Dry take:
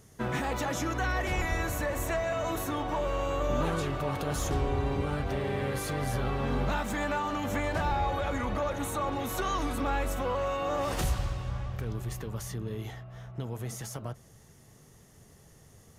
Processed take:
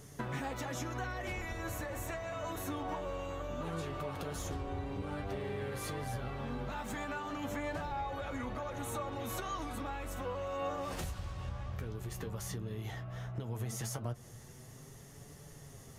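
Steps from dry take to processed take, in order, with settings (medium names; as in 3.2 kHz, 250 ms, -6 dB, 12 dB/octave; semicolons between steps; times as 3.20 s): compression 12:1, threshold -39 dBFS, peak gain reduction 16 dB; flange 0.13 Hz, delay 6.8 ms, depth 5.2 ms, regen +49%; trim +7.5 dB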